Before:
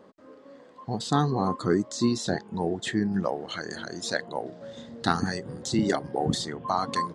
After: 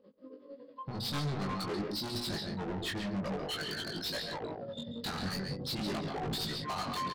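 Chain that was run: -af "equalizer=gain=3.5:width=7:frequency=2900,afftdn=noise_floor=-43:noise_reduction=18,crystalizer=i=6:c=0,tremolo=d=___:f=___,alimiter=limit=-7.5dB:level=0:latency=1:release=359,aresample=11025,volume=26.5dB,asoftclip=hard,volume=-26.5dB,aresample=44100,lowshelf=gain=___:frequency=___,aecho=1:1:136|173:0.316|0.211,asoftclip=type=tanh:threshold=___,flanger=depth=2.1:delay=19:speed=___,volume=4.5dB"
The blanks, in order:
0.84, 11, 9.5, 210, -35dB, 0.48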